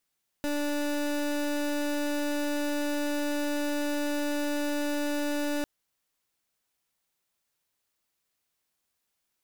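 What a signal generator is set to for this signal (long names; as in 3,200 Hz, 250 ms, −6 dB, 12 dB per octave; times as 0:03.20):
pulse wave 292 Hz, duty 27% −29 dBFS 5.20 s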